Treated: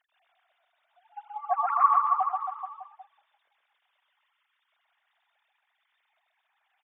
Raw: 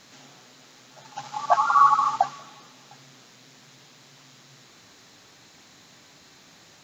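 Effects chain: formants replaced by sine waves; reverse bouncing-ball echo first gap 130 ms, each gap 1.1×, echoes 5; trim -6.5 dB

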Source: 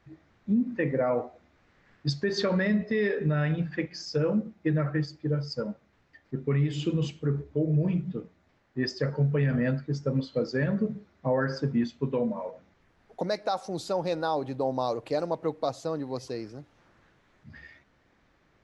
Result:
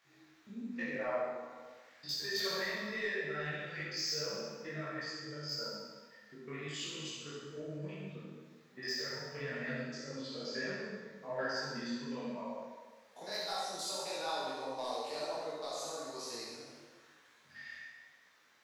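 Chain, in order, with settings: spectrogram pixelated in time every 50 ms; treble shelf 3.5 kHz -6 dB; in parallel at -0.5 dB: compression, threshold -40 dBFS, peak gain reduction 17 dB; on the sum: differentiator; sine folder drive 6 dB, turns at -28.5 dBFS; on a send: flutter echo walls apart 11.5 m, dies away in 0.89 s; on the sum: plate-style reverb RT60 1.5 s, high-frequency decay 0.7×, DRR -1.5 dB; detune thickener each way 36 cents; trim -1 dB

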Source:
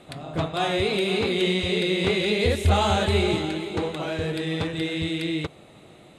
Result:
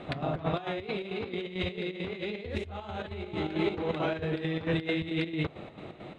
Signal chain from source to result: low-pass 2.8 kHz 12 dB/octave; compressor with a negative ratio -32 dBFS, ratio -1; square tremolo 4.5 Hz, depth 60%, duty 60%

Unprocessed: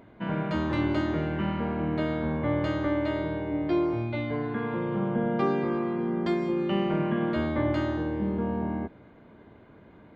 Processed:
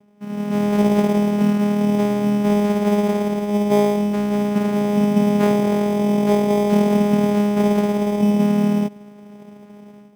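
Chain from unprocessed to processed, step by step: level rider gain up to 14.5 dB; vocoder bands 4, saw 206 Hz; in parallel at -7 dB: sample-rate reducer 2.8 kHz, jitter 0%; on the sum: trim -5 dB

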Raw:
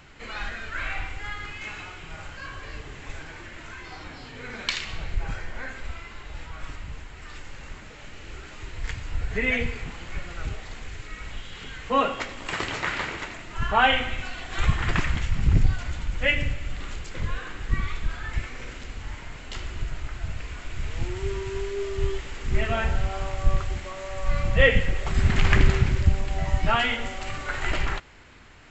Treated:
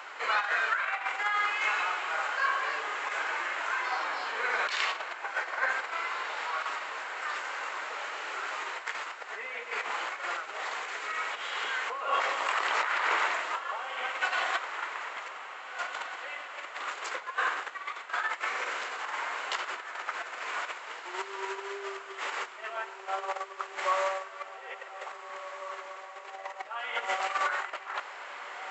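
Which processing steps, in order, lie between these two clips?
compressor with a negative ratio -34 dBFS, ratio -1; high-pass 440 Hz 24 dB/octave; peaking EQ 1.1 kHz +11.5 dB 1.6 oct; echo that smears into a reverb 1727 ms, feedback 42%, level -10 dB; trim -4 dB

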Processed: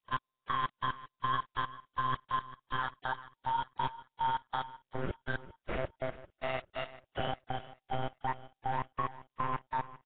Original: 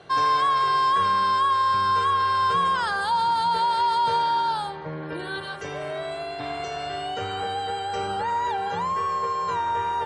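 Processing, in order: on a send at -12.5 dB: reverberation RT60 0.55 s, pre-delay 4 ms; on the sum: monotone LPC vocoder at 8 kHz 130 Hz; dynamic bell 1.9 kHz, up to +4 dB, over -41 dBFS, Q 3.6; granulator 100 ms, grains 20 per s, pitch spread up and down by 0 st; compression 12:1, threshold -27 dBFS, peak gain reduction 11 dB; trance gate ".x....xx." 182 bpm -60 dB; feedback delay 397 ms, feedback 43%, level -16.5 dB; Nellymoser 16 kbps 8 kHz

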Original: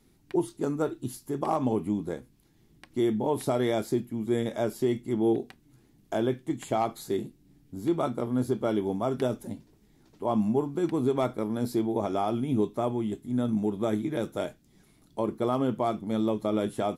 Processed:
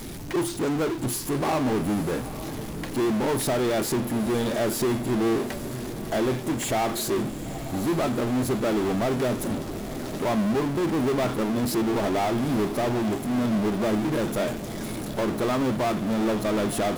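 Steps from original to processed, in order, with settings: power-law waveshaper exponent 0.35; echo that smears into a reverb 876 ms, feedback 64%, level -13 dB; trim -3.5 dB

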